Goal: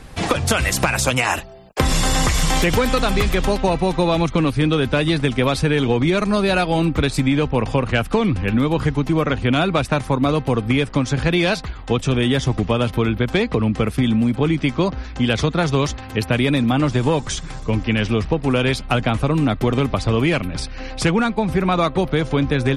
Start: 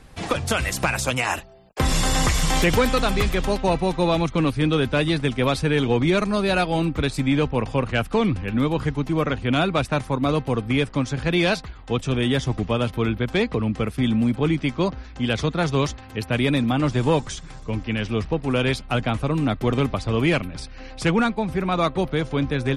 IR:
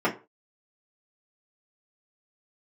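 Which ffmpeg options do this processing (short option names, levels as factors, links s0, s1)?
-af "acompressor=threshold=0.0794:ratio=6,volume=2.51"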